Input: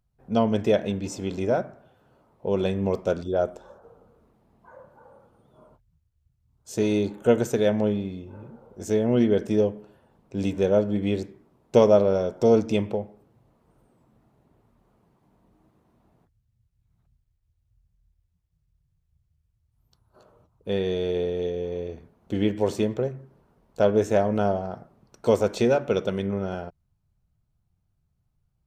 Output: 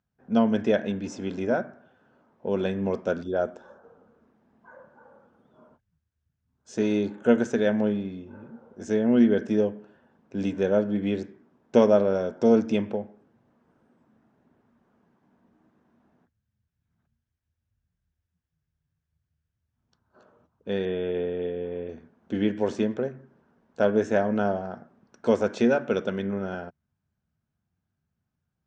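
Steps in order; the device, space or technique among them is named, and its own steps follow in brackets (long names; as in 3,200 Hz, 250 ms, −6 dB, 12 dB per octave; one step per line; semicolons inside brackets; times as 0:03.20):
0:20.85–0:21.89: Butterworth low-pass 3,400 Hz 72 dB per octave
car door speaker (loudspeaker in its box 100–6,500 Hz, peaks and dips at 120 Hz −7 dB, 240 Hz +7 dB, 1,600 Hz +9 dB, 4,300 Hz −5 dB)
level −2.5 dB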